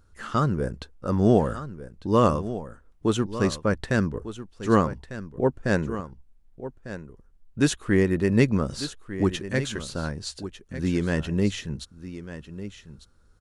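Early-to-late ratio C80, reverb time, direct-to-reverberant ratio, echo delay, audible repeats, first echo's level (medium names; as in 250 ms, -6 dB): no reverb, no reverb, no reverb, 1199 ms, 1, -13.0 dB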